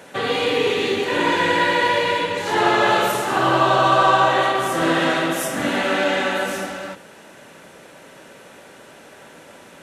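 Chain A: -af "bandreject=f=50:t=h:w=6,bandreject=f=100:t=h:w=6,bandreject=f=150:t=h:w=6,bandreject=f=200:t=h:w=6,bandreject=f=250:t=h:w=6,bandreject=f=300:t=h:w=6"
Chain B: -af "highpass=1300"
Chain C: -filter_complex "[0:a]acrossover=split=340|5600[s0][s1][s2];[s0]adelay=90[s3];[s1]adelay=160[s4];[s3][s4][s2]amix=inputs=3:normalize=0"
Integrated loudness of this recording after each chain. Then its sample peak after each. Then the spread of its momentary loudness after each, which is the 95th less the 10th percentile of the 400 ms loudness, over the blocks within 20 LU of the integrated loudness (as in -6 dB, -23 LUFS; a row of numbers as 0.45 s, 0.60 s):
-18.5 LUFS, -23.0 LUFS, -19.5 LUFS; -3.5 dBFS, -10.0 dBFS, -4.0 dBFS; 8 LU, 6 LU, 9 LU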